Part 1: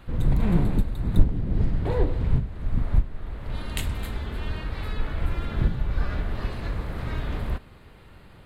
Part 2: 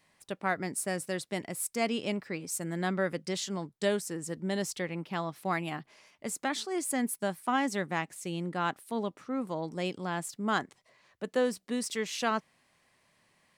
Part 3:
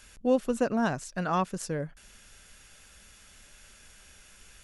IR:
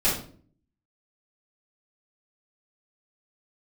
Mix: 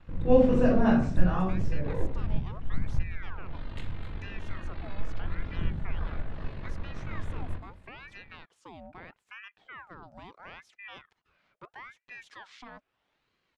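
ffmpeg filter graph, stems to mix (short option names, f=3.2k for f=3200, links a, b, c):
-filter_complex "[0:a]aeval=exprs='val(0)*sin(2*PI*24*n/s)':c=same,volume=-7.5dB,asplit=2[a][b];[b]volume=-19dB[c];[1:a]alimiter=limit=-24dB:level=0:latency=1:release=152,acompressor=threshold=-49dB:ratio=1.5,aeval=exprs='val(0)*sin(2*PI*1300*n/s+1300*0.7/0.77*sin(2*PI*0.77*n/s))':c=same,adelay=400,volume=-3dB,asplit=3[d][e][f];[d]atrim=end=3.63,asetpts=PTS-STARTPTS,afade=t=out:st=3.626:d=0.004:c=hsin[g];[e]atrim=start=3.63:end=4.19,asetpts=PTS-STARTPTS,volume=0[h];[f]atrim=start=4.19,asetpts=PTS-STARTPTS,afade=t=in:d=0.004:c=hsin[i];[g][h][i]concat=n=3:v=0:a=1[j];[2:a]agate=range=-18dB:threshold=-50dB:ratio=16:detection=peak,flanger=delay=20:depth=5.1:speed=0.6,volume=-5dB,afade=t=out:st=0.67:d=0.79:silence=0.334965,asplit=2[k][l];[l]volume=-3.5dB[m];[3:a]atrim=start_sample=2205[n];[c][m]amix=inputs=2:normalize=0[o];[o][n]afir=irnorm=-1:irlink=0[p];[a][j][k][p]amix=inputs=4:normalize=0,lowpass=3.4k"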